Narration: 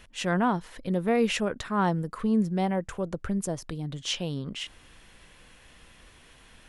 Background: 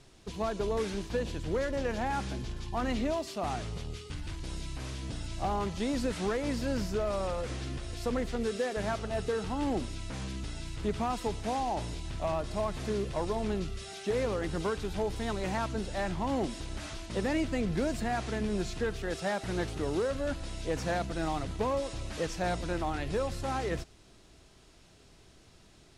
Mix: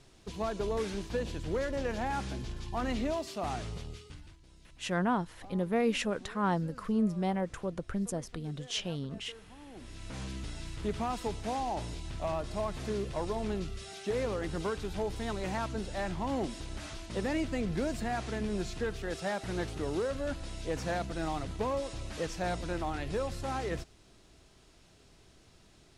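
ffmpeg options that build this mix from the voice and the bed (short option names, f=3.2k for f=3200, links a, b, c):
-filter_complex "[0:a]adelay=4650,volume=-4.5dB[a];[1:a]volume=16.5dB,afade=t=out:st=3.7:d=0.68:silence=0.11885,afade=t=in:st=9.74:d=0.45:silence=0.125893[b];[a][b]amix=inputs=2:normalize=0"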